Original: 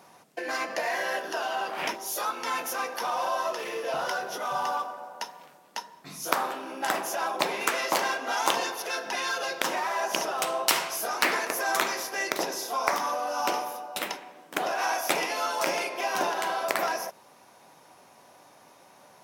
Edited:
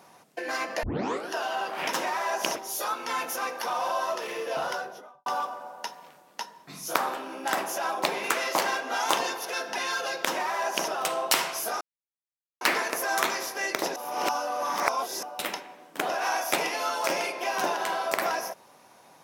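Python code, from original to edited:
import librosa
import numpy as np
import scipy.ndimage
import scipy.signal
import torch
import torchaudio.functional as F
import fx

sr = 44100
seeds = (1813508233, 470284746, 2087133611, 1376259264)

y = fx.studio_fade_out(x, sr, start_s=3.98, length_s=0.65)
y = fx.edit(y, sr, fx.tape_start(start_s=0.83, length_s=0.47),
    fx.duplicate(start_s=9.63, length_s=0.63, to_s=1.93),
    fx.insert_silence(at_s=11.18, length_s=0.8),
    fx.reverse_span(start_s=12.53, length_s=1.27), tone=tone)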